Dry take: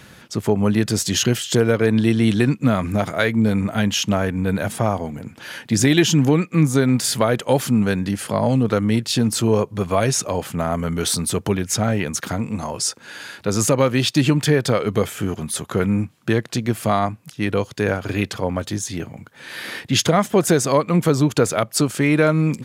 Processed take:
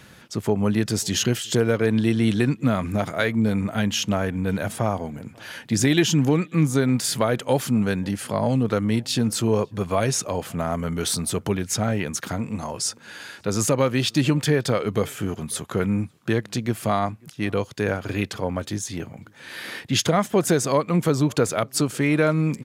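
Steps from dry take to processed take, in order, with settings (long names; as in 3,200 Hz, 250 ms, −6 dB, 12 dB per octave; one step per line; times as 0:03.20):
slap from a distant wall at 93 metres, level −28 dB
level −3.5 dB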